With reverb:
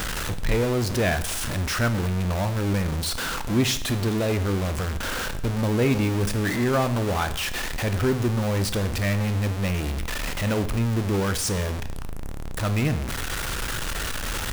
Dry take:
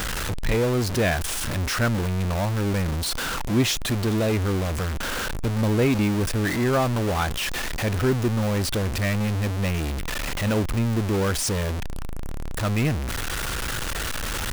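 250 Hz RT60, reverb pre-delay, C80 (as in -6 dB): 0.80 s, 6 ms, 16.5 dB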